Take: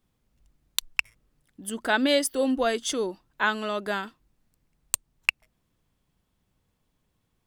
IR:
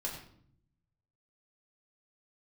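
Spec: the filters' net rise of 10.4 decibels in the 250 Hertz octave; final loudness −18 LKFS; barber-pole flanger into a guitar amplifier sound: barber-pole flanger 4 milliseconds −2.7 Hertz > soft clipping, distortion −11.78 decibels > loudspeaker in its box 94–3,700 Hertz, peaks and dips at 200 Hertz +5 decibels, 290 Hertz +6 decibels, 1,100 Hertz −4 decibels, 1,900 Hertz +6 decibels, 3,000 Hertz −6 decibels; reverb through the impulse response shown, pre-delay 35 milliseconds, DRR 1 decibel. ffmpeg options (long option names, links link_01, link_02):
-filter_complex "[0:a]equalizer=frequency=250:width_type=o:gain=6,asplit=2[link_01][link_02];[1:a]atrim=start_sample=2205,adelay=35[link_03];[link_02][link_03]afir=irnorm=-1:irlink=0,volume=-2.5dB[link_04];[link_01][link_04]amix=inputs=2:normalize=0,asplit=2[link_05][link_06];[link_06]adelay=4,afreqshift=-2.7[link_07];[link_05][link_07]amix=inputs=2:normalize=1,asoftclip=threshold=-19dB,highpass=94,equalizer=frequency=200:width_type=q:width=4:gain=5,equalizer=frequency=290:width_type=q:width=4:gain=6,equalizer=frequency=1100:width_type=q:width=4:gain=-4,equalizer=frequency=1900:width_type=q:width=4:gain=6,equalizer=frequency=3000:width_type=q:width=4:gain=-6,lowpass=frequency=3700:width=0.5412,lowpass=frequency=3700:width=1.3066,volume=7.5dB"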